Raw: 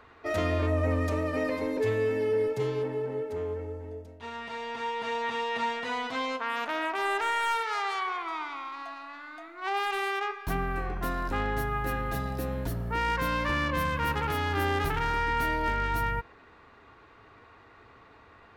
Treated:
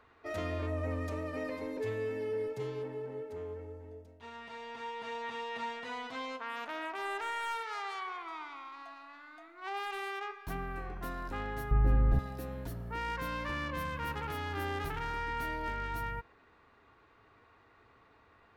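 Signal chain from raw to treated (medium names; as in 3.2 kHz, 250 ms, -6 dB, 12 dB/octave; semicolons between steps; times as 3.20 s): 11.71–12.19 s: tilt EQ -4.5 dB/octave; trim -8.5 dB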